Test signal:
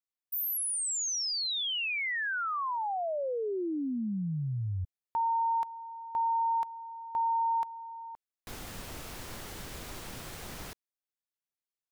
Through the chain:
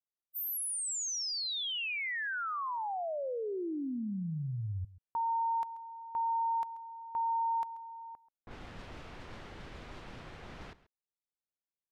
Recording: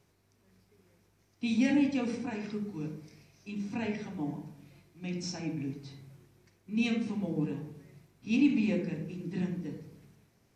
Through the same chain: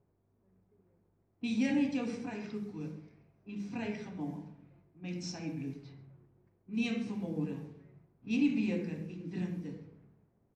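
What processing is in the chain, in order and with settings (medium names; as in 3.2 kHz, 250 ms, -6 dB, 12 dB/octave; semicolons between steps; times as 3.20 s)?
level-controlled noise filter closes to 810 Hz, open at -31.5 dBFS; echo from a far wall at 23 m, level -18 dB; trim -3.5 dB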